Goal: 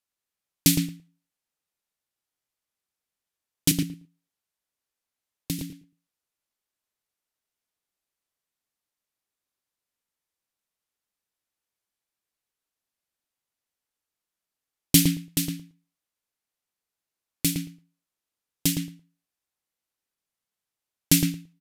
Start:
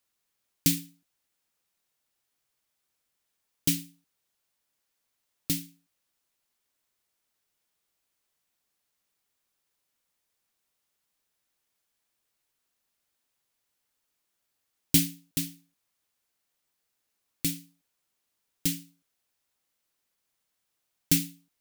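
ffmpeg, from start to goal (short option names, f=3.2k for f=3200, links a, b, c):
-filter_complex "[0:a]asettb=1/sr,asplit=3[a][b][c];[a]atrim=end=3.714[d];[b]atrim=start=3.71:end=5.59,asetpts=PTS-STARTPTS,afade=t=in:d=0.004:c=qsin,afade=t=out:st=1.876:d=0.004:c=qsin,acrossover=split=250|1900[e][f][g];[e]acompressor=threshold=-34dB:ratio=4[h];[f]acompressor=threshold=-44dB:ratio=4[i];[g]acompressor=threshold=-37dB:ratio=4[j];[h][i][j]amix=inputs=3:normalize=0[k];[c]atrim=start=5.586[l];[d][k]acrossfade=d=0.004:c1=hsin:c2=qsin[m];[m][l]acrossfade=d=0.004:c1=qsin:c2=hsin,agate=range=-13dB:threshold=-50dB:ratio=16:detection=peak,asplit=2[n][o];[o]adelay=113,lowpass=f=1.7k:p=1,volume=-3.5dB,asplit=2[p][q];[q]adelay=113,lowpass=f=1.7k:p=1,volume=0.15,asplit=2[r][s];[s]adelay=113,lowpass=f=1.7k:p=1,volume=0.15[t];[p][r][t]amix=inputs=3:normalize=0[u];[n][u]amix=inputs=2:normalize=0,aresample=32000,aresample=44100,volume=5.5dB"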